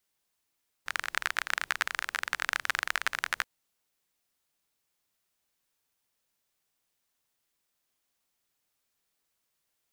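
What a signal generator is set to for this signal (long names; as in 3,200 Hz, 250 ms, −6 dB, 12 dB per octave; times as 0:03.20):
rain-like ticks over hiss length 2.58 s, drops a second 27, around 1,600 Hz, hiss −27 dB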